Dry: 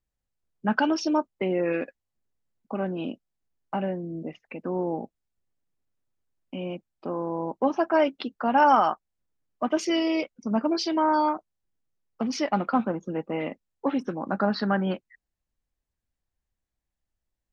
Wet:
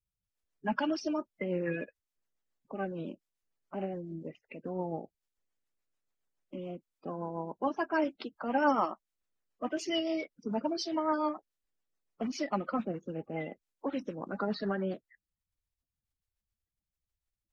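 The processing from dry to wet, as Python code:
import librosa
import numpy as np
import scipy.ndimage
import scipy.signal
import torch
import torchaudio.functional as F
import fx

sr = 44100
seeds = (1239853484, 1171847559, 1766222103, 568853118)

y = fx.spec_quant(x, sr, step_db=30)
y = fx.rotary(y, sr, hz=7.0)
y = y * 10.0 ** (-5.0 / 20.0)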